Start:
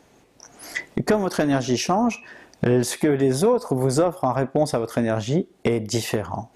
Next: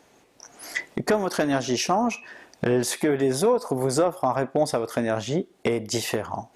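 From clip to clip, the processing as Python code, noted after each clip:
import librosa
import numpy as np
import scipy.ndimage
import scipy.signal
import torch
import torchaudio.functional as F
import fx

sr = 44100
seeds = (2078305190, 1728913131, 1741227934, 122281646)

y = fx.low_shelf(x, sr, hz=240.0, db=-8.5)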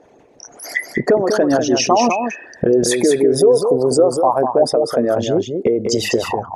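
y = fx.envelope_sharpen(x, sr, power=2.0)
y = y + 10.0 ** (-6.0 / 20.0) * np.pad(y, (int(197 * sr / 1000.0), 0))[:len(y)]
y = F.gain(torch.from_numpy(y), 8.0).numpy()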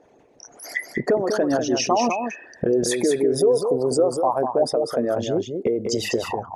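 y = fx.quant_float(x, sr, bits=8)
y = F.gain(torch.from_numpy(y), -6.0).numpy()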